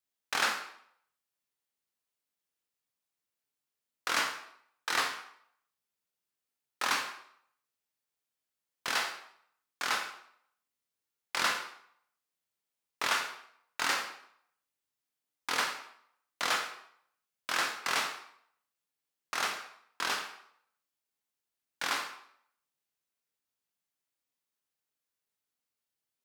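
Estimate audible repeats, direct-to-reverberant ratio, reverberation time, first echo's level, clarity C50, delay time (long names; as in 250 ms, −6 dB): no echo audible, 2.5 dB, 0.65 s, no echo audible, 7.0 dB, no echo audible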